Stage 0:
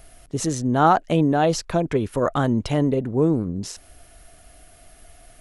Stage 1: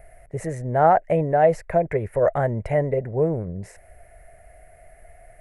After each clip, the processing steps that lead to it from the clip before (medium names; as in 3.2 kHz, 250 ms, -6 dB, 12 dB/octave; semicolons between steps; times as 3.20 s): FFT filter 110 Hz 0 dB, 180 Hz -4 dB, 270 Hz -15 dB, 400 Hz -2 dB, 610 Hz +7 dB, 1.2 kHz -10 dB, 2 kHz +6 dB, 3.3 kHz -23 dB, 6 kHz -20 dB, 8.8 kHz -9 dB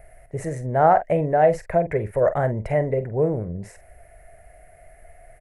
doubling 46 ms -12 dB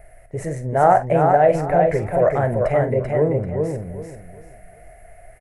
flange 1.6 Hz, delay 4.5 ms, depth 6.7 ms, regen -65%; on a send: feedback delay 388 ms, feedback 26%, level -4 dB; on the sum: trim +6 dB